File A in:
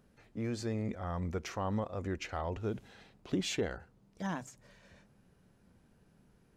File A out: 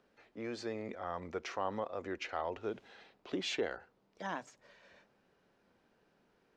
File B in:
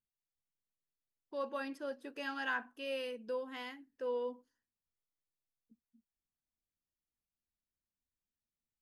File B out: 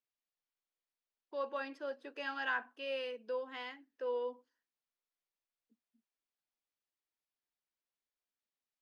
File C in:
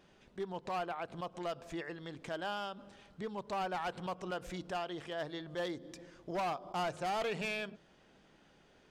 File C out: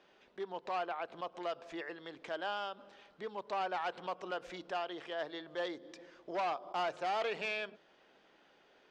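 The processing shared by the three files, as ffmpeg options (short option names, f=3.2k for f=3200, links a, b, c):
-filter_complex "[0:a]acrossover=split=300 5700:gain=0.126 1 0.112[a][b][c];[a][b][c]amix=inputs=3:normalize=0,volume=1dB"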